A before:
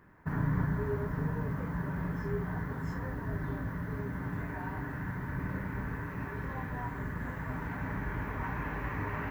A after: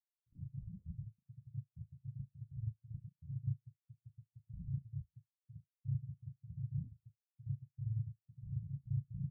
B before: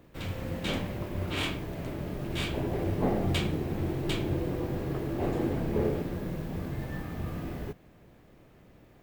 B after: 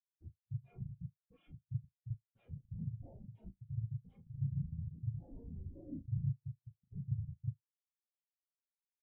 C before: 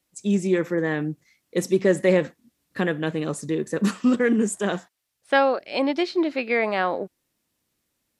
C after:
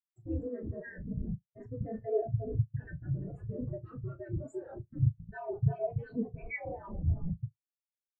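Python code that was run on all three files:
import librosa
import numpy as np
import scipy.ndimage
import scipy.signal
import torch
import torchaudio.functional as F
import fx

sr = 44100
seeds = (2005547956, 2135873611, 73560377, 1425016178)

y = scipy.signal.sosfilt(scipy.signal.butter(2, 910.0, 'highpass', fs=sr, output='sos'), x)
y = fx.rider(y, sr, range_db=3, speed_s=2.0)
y = fx.echo_alternate(y, sr, ms=347, hz=1600.0, feedback_pct=51, wet_db=-8.5)
y = fx.cheby_harmonics(y, sr, harmonics=(2,), levels_db=(-35,), full_scale_db=-11.0)
y = fx.schmitt(y, sr, flips_db=-35.5)
y = y * np.sin(2.0 * np.pi * 120.0 * np.arange(len(y)) / sr)
y = fx.room_flutter(y, sr, wall_m=6.3, rt60_s=0.39)
y = fx.spectral_expand(y, sr, expansion=4.0)
y = F.gain(torch.from_numpy(y), 8.5).numpy()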